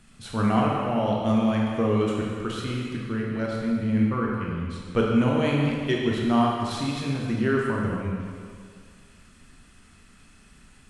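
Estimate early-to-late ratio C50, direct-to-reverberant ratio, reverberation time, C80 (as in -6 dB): -0.5 dB, -3.0 dB, 2.2 s, 1.0 dB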